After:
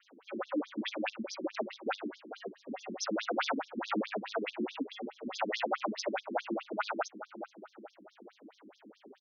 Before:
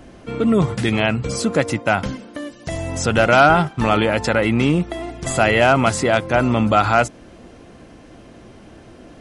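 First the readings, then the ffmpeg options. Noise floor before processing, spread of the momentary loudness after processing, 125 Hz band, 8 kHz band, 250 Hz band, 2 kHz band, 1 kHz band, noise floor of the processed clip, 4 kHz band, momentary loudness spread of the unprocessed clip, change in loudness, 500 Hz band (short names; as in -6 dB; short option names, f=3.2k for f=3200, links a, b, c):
-44 dBFS, 17 LU, under -30 dB, -18.0 dB, -18.0 dB, -19.5 dB, -18.5 dB, -67 dBFS, -14.5 dB, 14 LU, -19.5 dB, -19.0 dB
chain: -filter_complex "[0:a]aeval=exprs='val(0)*sin(2*PI*100*n/s)':c=same,asplit=2[a][b];[b]adelay=435,lowpass=f=1.2k:p=1,volume=-15dB,asplit=2[c][d];[d]adelay=435,lowpass=f=1.2k:p=1,volume=0.5,asplit=2[e][f];[f]adelay=435,lowpass=f=1.2k:p=1,volume=0.5,asplit=2[g][h];[h]adelay=435,lowpass=f=1.2k:p=1,volume=0.5,asplit=2[i][j];[j]adelay=435,lowpass=f=1.2k:p=1,volume=0.5[k];[a][c][e][g][i][k]amix=inputs=6:normalize=0,volume=17dB,asoftclip=hard,volume=-17dB,adynamicequalizer=threshold=0.0158:dfrequency=400:dqfactor=2.3:tfrequency=400:tqfactor=2.3:attack=5:release=100:ratio=0.375:range=2:mode=cutabove:tftype=bell,afftfilt=real='re*between(b*sr/1024,250*pow(4800/250,0.5+0.5*sin(2*PI*4.7*pts/sr))/1.41,250*pow(4800/250,0.5+0.5*sin(2*PI*4.7*pts/sr))*1.41)':imag='im*between(b*sr/1024,250*pow(4800/250,0.5+0.5*sin(2*PI*4.7*pts/sr))/1.41,250*pow(4800/250,0.5+0.5*sin(2*PI*4.7*pts/sr))*1.41)':win_size=1024:overlap=0.75,volume=-3dB"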